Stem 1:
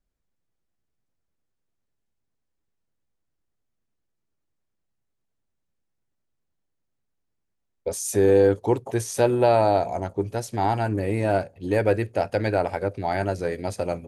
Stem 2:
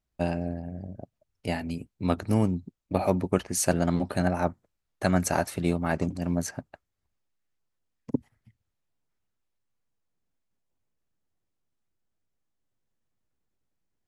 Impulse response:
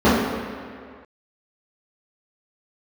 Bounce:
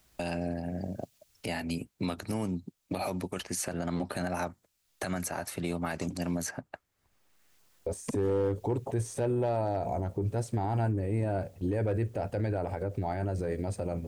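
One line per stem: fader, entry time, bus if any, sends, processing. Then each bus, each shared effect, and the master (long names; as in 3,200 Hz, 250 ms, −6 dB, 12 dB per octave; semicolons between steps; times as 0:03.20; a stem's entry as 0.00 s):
−3.5 dB, 0.00 s, no send, de-essing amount 65%; noise gate with hold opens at −35 dBFS; parametric band 8,300 Hz +10 dB 0.37 octaves
−1.5 dB, 0.00 s, no send, spectral tilt +4 dB per octave; multiband upward and downward compressor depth 70%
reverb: not used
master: spectral tilt −2.5 dB per octave; gain into a clipping stage and back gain 12 dB; brickwall limiter −22.5 dBFS, peak gain reduction 10.5 dB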